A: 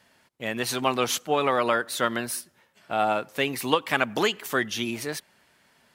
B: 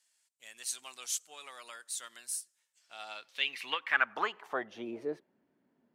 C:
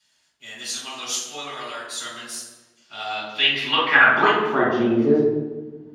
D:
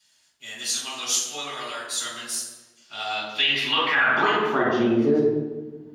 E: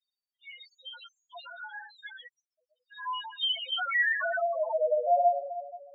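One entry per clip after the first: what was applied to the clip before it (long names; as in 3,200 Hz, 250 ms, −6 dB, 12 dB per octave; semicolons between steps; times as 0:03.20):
band-pass filter sweep 7,900 Hz → 280 Hz, 0:02.71–0:05.37
convolution reverb RT60 1.2 s, pre-delay 3 ms, DRR −10 dB; level −3.5 dB
high-shelf EQ 4,200 Hz +7 dB; brickwall limiter −10.5 dBFS, peak gain reduction 9.5 dB; level −1 dB
spectral peaks only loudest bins 2; single-sideband voice off tune +260 Hz 310–3,100 Hz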